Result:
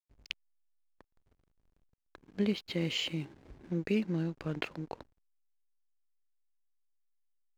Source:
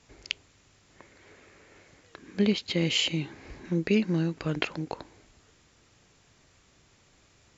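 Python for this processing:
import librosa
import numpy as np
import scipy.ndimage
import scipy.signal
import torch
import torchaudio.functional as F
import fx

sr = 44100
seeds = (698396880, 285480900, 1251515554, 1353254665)

y = fx.high_shelf(x, sr, hz=6100.0, db=-8.5)
y = fx.backlash(y, sr, play_db=-41.5)
y = y * 10.0 ** (-6.0 / 20.0)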